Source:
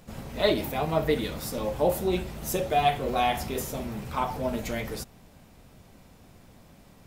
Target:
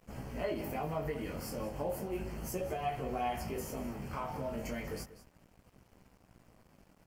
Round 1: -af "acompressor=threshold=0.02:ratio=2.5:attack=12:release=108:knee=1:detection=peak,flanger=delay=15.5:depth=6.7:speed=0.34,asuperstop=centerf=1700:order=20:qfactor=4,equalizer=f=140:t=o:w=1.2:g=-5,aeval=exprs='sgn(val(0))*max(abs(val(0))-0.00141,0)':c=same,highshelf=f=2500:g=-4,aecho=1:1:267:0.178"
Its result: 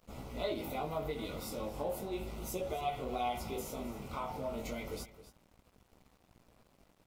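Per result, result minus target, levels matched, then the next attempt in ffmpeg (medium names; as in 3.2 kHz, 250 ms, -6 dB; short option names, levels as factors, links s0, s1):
echo 78 ms late; 4 kHz band +4.5 dB; 125 Hz band -3.0 dB
-af "acompressor=threshold=0.02:ratio=2.5:attack=12:release=108:knee=1:detection=peak,flanger=delay=15.5:depth=6.7:speed=0.34,asuperstop=centerf=1700:order=20:qfactor=4,equalizer=f=140:t=o:w=1.2:g=-5,aeval=exprs='sgn(val(0))*max(abs(val(0))-0.00141,0)':c=same,highshelf=f=2500:g=-4,aecho=1:1:189:0.178"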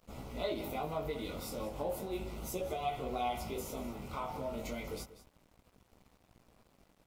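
4 kHz band +4.5 dB; 125 Hz band -3.0 dB
-af "acompressor=threshold=0.02:ratio=2.5:attack=12:release=108:knee=1:detection=peak,flanger=delay=15.5:depth=6.7:speed=0.34,asuperstop=centerf=3700:order=20:qfactor=4,equalizer=f=140:t=o:w=1.2:g=-5,aeval=exprs='sgn(val(0))*max(abs(val(0))-0.00141,0)':c=same,highshelf=f=2500:g=-4,aecho=1:1:189:0.178"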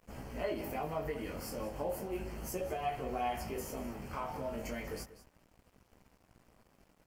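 125 Hz band -3.0 dB
-af "acompressor=threshold=0.02:ratio=2.5:attack=12:release=108:knee=1:detection=peak,flanger=delay=15.5:depth=6.7:speed=0.34,asuperstop=centerf=3700:order=20:qfactor=4,aeval=exprs='sgn(val(0))*max(abs(val(0))-0.00141,0)':c=same,highshelf=f=2500:g=-4,aecho=1:1:189:0.178"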